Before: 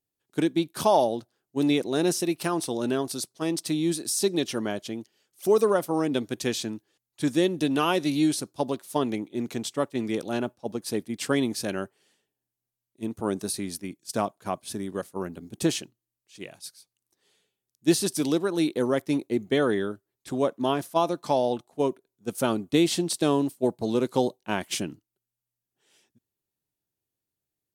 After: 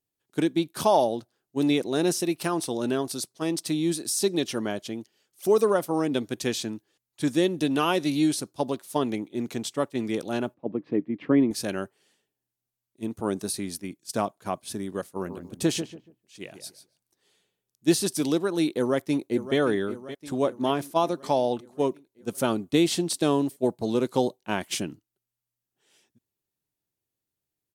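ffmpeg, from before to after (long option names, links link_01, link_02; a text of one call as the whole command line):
ffmpeg -i in.wav -filter_complex "[0:a]asettb=1/sr,asplit=3[link_01][link_02][link_03];[link_01]atrim=end=10.544[link_04];[link_02]atrim=start=10.54:end=11.51,asetpts=PTS-STARTPTS,afade=type=in:duration=0.004:curve=qsin,afade=type=out:start_time=0.966:duration=0.004:curve=qsin,highpass=110,equalizer=frequency=160:width_type=q:width=4:gain=6,equalizer=frequency=300:width_type=q:width=4:gain=9,equalizer=frequency=800:width_type=q:width=4:gain=-6,equalizer=frequency=1500:width_type=q:width=4:gain=-9,lowpass=frequency=2100:width=0.5412,lowpass=frequency=2100:width=1.3066[link_05];[link_03]atrim=start=11.506[link_06];[link_04][link_05]acrossfade=duration=0.004:curve1=hsin:curve2=qsin[link_07];[link_07][link_06]acrossfade=duration=0.004:curve1=qsin:curve2=hsin,asplit=3[link_08][link_09][link_10];[link_08]afade=type=out:start_time=15.16:duration=0.02[link_11];[link_09]asplit=2[link_12][link_13];[link_13]adelay=142,lowpass=frequency=1100:poles=1,volume=-8dB,asplit=2[link_14][link_15];[link_15]adelay=142,lowpass=frequency=1100:poles=1,volume=0.27,asplit=2[link_16][link_17];[link_17]adelay=142,lowpass=frequency=1100:poles=1,volume=0.27[link_18];[link_12][link_14][link_16][link_18]amix=inputs=4:normalize=0,afade=type=in:start_time=15.16:duration=0.02,afade=type=out:start_time=17.91:duration=0.02[link_19];[link_10]afade=type=in:start_time=17.91:duration=0.02[link_20];[link_11][link_19][link_20]amix=inputs=3:normalize=0,asplit=2[link_21][link_22];[link_22]afade=type=in:start_time=18.75:duration=0.01,afade=type=out:start_time=19.57:duration=0.01,aecho=0:1:570|1140|1710|2280|2850|3420|3990:0.223872|0.134323|0.080594|0.0483564|0.0290138|0.0174083|0.010445[link_23];[link_21][link_23]amix=inputs=2:normalize=0" out.wav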